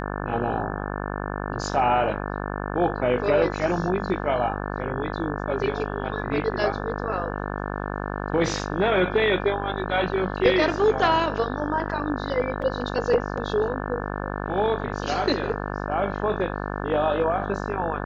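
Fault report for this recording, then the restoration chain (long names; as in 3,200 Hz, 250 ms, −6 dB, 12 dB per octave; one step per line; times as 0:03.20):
mains buzz 50 Hz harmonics 35 −30 dBFS
0:12.62: drop-out 4.5 ms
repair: hum removal 50 Hz, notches 35
repair the gap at 0:12.62, 4.5 ms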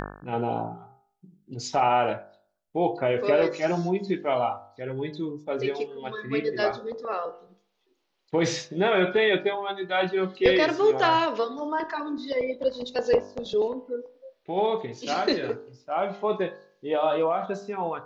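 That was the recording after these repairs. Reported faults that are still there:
none of them is left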